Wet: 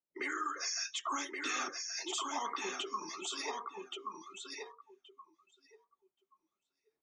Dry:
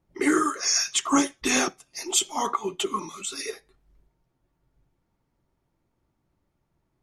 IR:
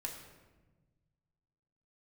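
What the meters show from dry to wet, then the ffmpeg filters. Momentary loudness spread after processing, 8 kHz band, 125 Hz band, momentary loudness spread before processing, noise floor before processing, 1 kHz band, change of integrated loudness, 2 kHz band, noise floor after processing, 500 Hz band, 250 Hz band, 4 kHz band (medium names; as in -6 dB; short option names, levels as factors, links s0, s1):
10 LU, -14.5 dB, under -20 dB, 11 LU, -76 dBFS, -9.0 dB, -13.5 dB, -8.5 dB, under -85 dBFS, -14.0 dB, -20.0 dB, -10.0 dB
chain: -filter_complex "[0:a]equalizer=f=8700:t=o:w=0.32:g=-3.5,acrossover=split=120|930[s0][s1][s2];[s1]acompressor=threshold=0.02:ratio=6[s3];[s0][s3][s2]amix=inputs=3:normalize=0,acrossover=split=220 7100:gain=0.0891 1 0.178[s4][s5][s6];[s4][s5][s6]amix=inputs=3:normalize=0,bandreject=f=50:t=h:w=6,bandreject=f=100:t=h:w=6,bandreject=f=150:t=h:w=6,bandreject=f=200:t=h:w=6,bandreject=f=250:t=h:w=6,bandreject=f=300:t=h:w=6,bandreject=f=350:t=h:w=6,bandreject=f=400:t=h:w=6,bandreject=f=450:t=h:w=6,alimiter=limit=0.0708:level=0:latency=1:release=82,aecho=1:1:1126|2252|3378:0.631|0.151|0.0363,areverse,acompressor=mode=upward:threshold=0.00178:ratio=2.5,areverse,afftdn=nr=21:nf=-44,volume=0.596"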